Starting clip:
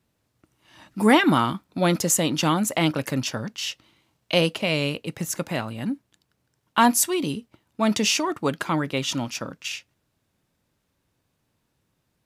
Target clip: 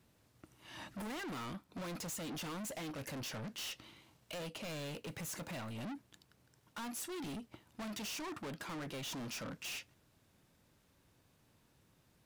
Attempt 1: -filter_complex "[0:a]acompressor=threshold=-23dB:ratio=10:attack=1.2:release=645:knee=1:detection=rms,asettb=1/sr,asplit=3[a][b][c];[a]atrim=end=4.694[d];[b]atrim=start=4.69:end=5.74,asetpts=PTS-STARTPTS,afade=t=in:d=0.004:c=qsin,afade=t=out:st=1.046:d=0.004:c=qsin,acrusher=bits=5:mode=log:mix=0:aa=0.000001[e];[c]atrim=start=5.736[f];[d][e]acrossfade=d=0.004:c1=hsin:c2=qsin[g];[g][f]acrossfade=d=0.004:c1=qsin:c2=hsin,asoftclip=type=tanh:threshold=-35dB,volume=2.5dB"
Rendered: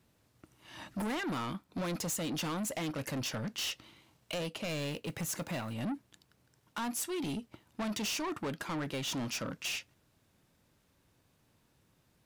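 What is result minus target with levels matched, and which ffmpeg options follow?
soft clip: distortion -4 dB
-filter_complex "[0:a]acompressor=threshold=-23dB:ratio=10:attack=1.2:release=645:knee=1:detection=rms,asettb=1/sr,asplit=3[a][b][c];[a]atrim=end=4.694[d];[b]atrim=start=4.69:end=5.74,asetpts=PTS-STARTPTS,afade=t=in:d=0.004:c=qsin,afade=t=out:st=1.046:d=0.004:c=qsin,acrusher=bits=5:mode=log:mix=0:aa=0.000001[e];[c]atrim=start=5.736[f];[d][e]acrossfade=d=0.004:c1=hsin:c2=qsin[g];[g][f]acrossfade=d=0.004:c1=qsin:c2=hsin,asoftclip=type=tanh:threshold=-44dB,volume=2.5dB"

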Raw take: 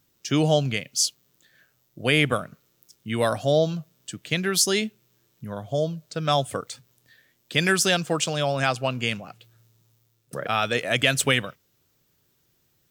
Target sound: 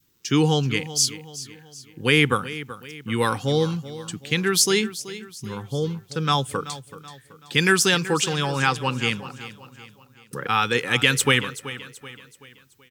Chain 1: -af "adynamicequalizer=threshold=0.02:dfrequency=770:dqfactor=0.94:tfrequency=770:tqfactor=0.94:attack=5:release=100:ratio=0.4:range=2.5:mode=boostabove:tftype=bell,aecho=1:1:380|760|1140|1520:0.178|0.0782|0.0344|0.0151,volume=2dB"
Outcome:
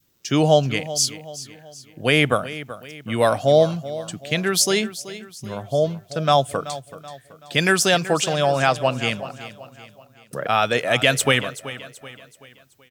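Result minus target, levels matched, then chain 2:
500 Hz band +4.5 dB
-af "adynamicequalizer=threshold=0.02:dfrequency=770:dqfactor=0.94:tfrequency=770:tqfactor=0.94:attack=5:release=100:ratio=0.4:range=2.5:mode=boostabove:tftype=bell,asuperstop=centerf=640:order=4:qfactor=2,aecho=1:1:380|760|1140|1520:0.178|0.0782|0.0344|0.0151,volume=2dB"

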